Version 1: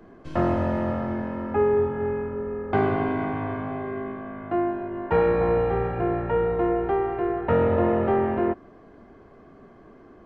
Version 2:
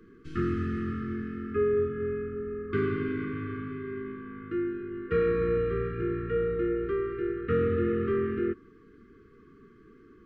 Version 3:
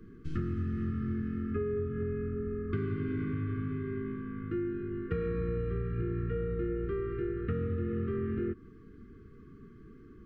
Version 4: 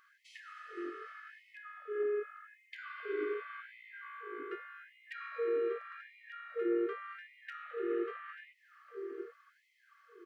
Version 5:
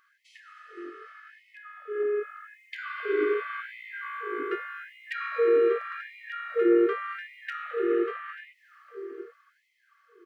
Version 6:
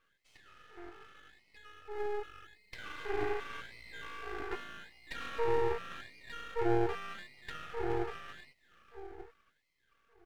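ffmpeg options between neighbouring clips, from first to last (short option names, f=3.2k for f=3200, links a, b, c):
-af "afftfilt=real='re*(1-between(b*sr/4096,480,1100))':imag='im*(1-between(b*sr/4096,480,1100))':win_size=4096:overlap=0.75,volume=-4.5dB"
-af "bass=f=250:g=12,treble=f=4k:g=2,acompressor=threshold=-26dB:ratio=6,volume=-3.5dB"
-filter_complex "[0:a]asoftclip=type=hard:threshold=-23dB,asplit=2[a][b];[b]adelay=803,lowpass=f=1.2k:p=1,volume=-9dB,asplit=2[c][d];[d]adelay=803,lowpass=f=1.2k:p=1,volume=0.35,asplit=2[e][f];[f]adelay=803,lowpass=f=1.2k:p=1,volume=0.35,asplit=2[g][h];[h]adelay=803,lowpass=f=1.2k:p=1,volume=0.35[i];[a][c][e][g][i]amix=inputs=5:normalize=0,afftfilt=real='re*gte(b*sr/1024,300*pow(1900/300,0.5+0.5*sin(2*PI*0.85*pts/sr)))':imag='im*gte(b*sr/1024,300*pow(1900/300,0.5+0.5*sin(2*PI*0.85*pts/sr)))':win_size=1024:overlap=0.75,volume=4.5dB"
-af "dynaudnorm=f=430:g=11:m=11.5dB"
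-af "aeval=exprs='max(val(0),0)':c=same,volume=-4.5dB"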